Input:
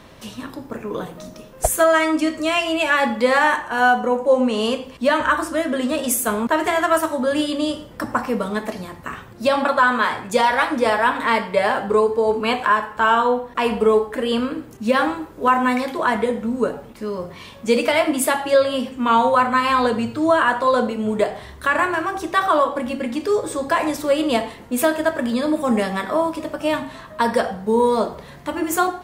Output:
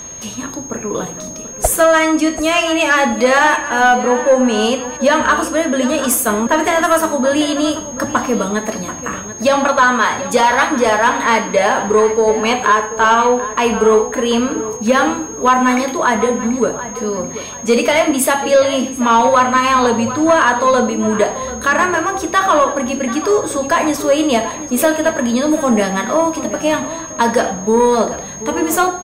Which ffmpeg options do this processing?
-filter_complex "[0:a]acontrast=79,asplit=2[s0][s1];[s1]adelay=736,lowpass=f=4100:p=1,volume=0.224,asplit=2[s2][s3];[s3]adelay=736,lowpass=f=4100:p=1,volume=0.36,asplit=2[s4][s5];[s5]adelay=736,lowpass=f=4100:p=1,volume=0.36,asplit=2[s6][s7];[s7]adelay=736,lowpass=f=4100:p=1,volume=0.36[s8];[s0][s2][s4][s6][s8]amix=inputs=5:normalize=0,aeval=exprs='val(0)+0.0398*sin(2*PI*6500*n/s)':c=same,volume=0.891"

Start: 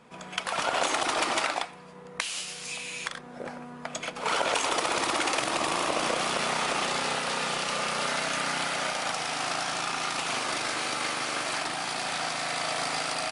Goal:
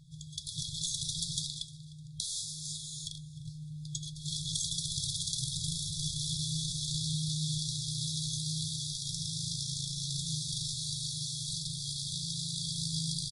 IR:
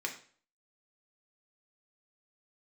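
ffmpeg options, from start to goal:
-filter_complex "[0:a]lowshelf=f=270:t=q:w=1.5:g=10.5,flanger=delay=2.7:depth=7.9:regen=73:speed=0.17:shape=triangular,afftfilt=real='re*(1-between(b*sr/4096,170,3300))':imag='im*(1-between(b*sr/4096,170,3300))':win_size=4096:overlap=0.75,asplit=2[s0][s1];[s1]aecho=0:1:304|608:0.1|0.028[s2];[s0][s2]amix=inputs=2:normalize=0,volume=1.5"

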